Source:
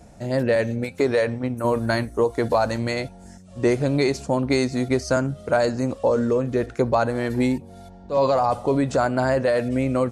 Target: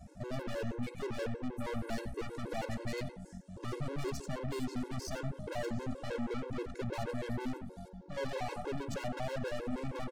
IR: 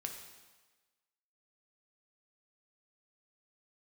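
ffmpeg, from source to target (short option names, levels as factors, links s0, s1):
-filter_complex "[0:a]lowshelf=f=370:g=4.5,aeval=exprs='(tanh(31.6*val(0)+0.6)-tanh(0.6))/31.6':c=same,asplit=2[s0][s1];[s1]adelay=92,lowpass=f=2100:p=1,volume=0.376,asplit=2[s2][s3];[s3]adelay=92,lowpass=f=2100:p=1,volume=0.39,asplit=2[s4][s5];[s5]adelay=92,lowpass=f=2100:p=1,volume=0.39,asplit=2[s6][s7];[s7]adelay=92,lowpass=f=2100:p=1,volume=0.39[s8];[s0][s2][s4][s6][s8]amix=inputs=5:normalize=0,afftfilt=real='re*gt(sin(2*PI*6.3*pts/sr)*(1-2*mod(floor(b*sr/1024/280),2)),0)':imag='im*gt(sin(2*PI*6.3*pts/sr)*(1-2*mod(floor(b*sr/1024/280),2)),0)':win_size=1024:overlap=0.75,volume=0.631"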